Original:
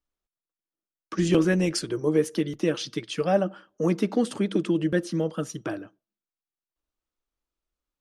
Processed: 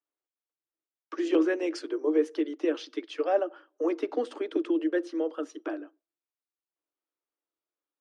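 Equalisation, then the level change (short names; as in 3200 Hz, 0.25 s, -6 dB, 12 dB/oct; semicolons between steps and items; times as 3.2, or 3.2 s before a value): steep high-pass 270 Hz 96 dB/oct; tape spacing loss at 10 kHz 21 dB; -1.0 dB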